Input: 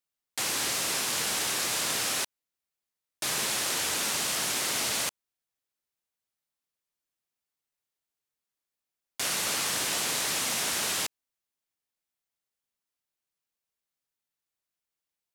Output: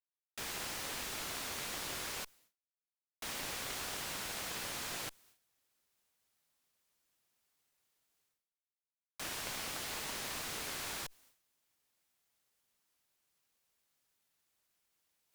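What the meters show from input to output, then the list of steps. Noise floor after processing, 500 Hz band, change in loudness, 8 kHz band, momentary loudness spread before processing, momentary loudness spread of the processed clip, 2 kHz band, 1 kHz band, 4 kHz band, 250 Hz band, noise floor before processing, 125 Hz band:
under -85 dBFS, -10.0 dB, -12.5 dB, -14.5 dB, 5 LU, 5 LU, -10.5 dB, -10.0 dB, -12.5 dB, -9.5 dB, under -85 dBFS, -7.0 dB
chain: Chebyshev shaper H 3 -19 dB, 5 -18 dB, 7 -11 dB, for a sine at -15 dBFS; reverse; upward compressor, threshold -48 dBFS; reverse; expander -58 dBFS; slew-rate limiter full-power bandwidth 53 Hz; trim +1.5 dB

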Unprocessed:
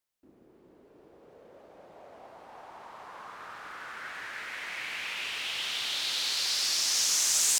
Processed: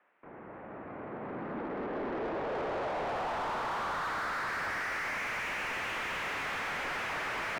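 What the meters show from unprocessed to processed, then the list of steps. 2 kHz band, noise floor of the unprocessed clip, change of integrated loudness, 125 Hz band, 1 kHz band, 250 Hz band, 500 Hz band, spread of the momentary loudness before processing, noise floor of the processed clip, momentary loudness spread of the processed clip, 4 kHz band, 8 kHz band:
+3.0 dB, -60 dBFS, -6.5 dB, +14.0 dB, +10.0 dB, +15.0 dB, +13.5 dB, 22 LU, -48 dBFS, 10 LU, -14.5 dB, -23.5 dB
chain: mistuned SSB -330 Hz 540–2600 Hz; overdrive pedal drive 36 dB, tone 1.4 kHz, clips at -26 dBFS

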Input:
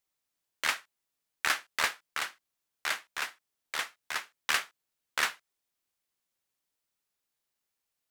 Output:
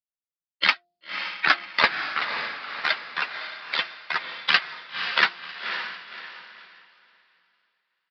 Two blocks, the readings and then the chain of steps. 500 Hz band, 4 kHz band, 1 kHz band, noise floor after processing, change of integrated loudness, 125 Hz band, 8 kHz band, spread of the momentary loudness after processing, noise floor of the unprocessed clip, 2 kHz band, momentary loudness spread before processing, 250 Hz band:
+9.5 dB, +9.5 dB, +9.0 dB, under -85 dBFS, +7.5 dB, no reading, under -15 dB, 13 LU, -85 dBFS, +9.5 dB, 7 LU, +11.5 dB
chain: expander on every frequency bin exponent 2; upward compressor, threshold -33 dBFS; resonant low shelf 130 Hz -7 dB, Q 3; de-hum 350.4 Hz, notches 2; on a send: echo that smears into a reverb 546 ms, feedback 48%, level -7 dB; on the sum: resampled via 11.025 kHz; compression 2:1, threshold -44 dBFS, peak gain reduction 10 dB; loudness maximiser +24 dB; three bands expanded up and down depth 100%; trim -7 dB

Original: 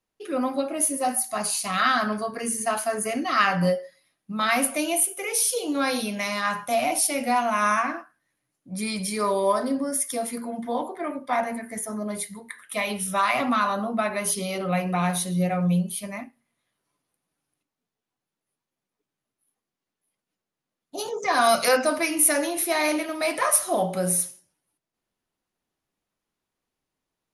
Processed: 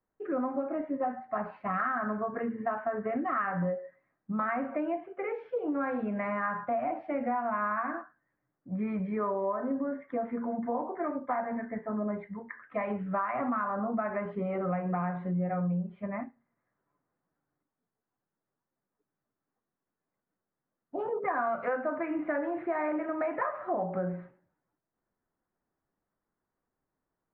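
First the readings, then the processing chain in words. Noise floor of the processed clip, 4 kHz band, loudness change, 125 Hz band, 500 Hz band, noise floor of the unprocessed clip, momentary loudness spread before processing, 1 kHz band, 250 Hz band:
under -85 dBFS, under -35 dB, -8.5 dB, -6.0 dB, -6.0 dB, under -85 dBFS, 11 LU, -7.5 dB, -4.5 dB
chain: steep low-pass 1.8 kHz 36 dB/octave; compression, threshold -28 dBFS, peak gain reduction 12 dB

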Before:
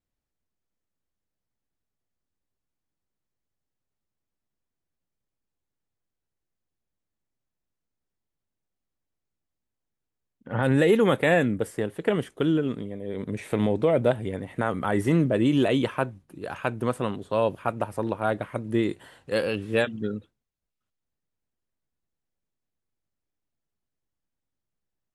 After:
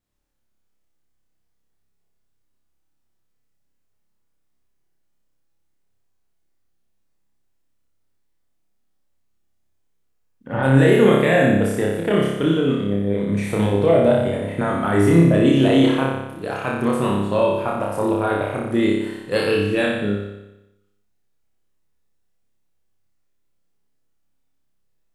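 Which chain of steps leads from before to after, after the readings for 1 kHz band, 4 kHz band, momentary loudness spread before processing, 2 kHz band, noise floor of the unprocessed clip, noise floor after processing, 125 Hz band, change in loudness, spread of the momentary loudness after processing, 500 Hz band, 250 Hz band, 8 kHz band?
+6.0 dB, +7.0 dB, 12 LU, +6.0 dB, -85 dBFS, -66 dBFS, +8.5 dB, +7.0 dB, 10 LU, +6.5 dB, +7.5 dB, +7.5 dB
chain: peak limiter -15 dBFS, peak gain reduction 6 dB; flutter echo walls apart 5.1 m, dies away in 0.95 s; trim +4.5 dB

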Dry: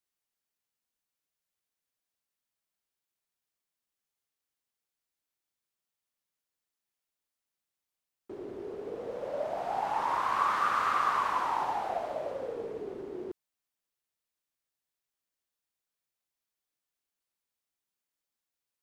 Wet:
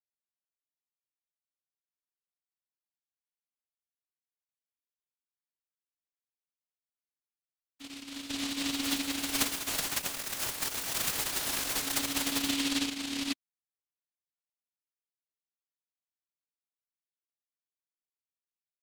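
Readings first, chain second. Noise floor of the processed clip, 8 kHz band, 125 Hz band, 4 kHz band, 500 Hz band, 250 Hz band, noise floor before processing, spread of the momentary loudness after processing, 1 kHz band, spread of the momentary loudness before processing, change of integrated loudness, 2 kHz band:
under -85 dBFS, +22.5 dB, +5.0 dB, +16.0 dB, -10.0 dB, +11.0 dB, under -85 dBFS, 9 LU, -14.0 dB, 14 LU, +1.0 dB, +1.5 dB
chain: formants replaced by sine waves; vocoder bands 8, square 278 Hz; on a send: reverse echo 496 ms -7 dB; on the sum: delay time shaken by noise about 3.3 kHz, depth 0.47 ms

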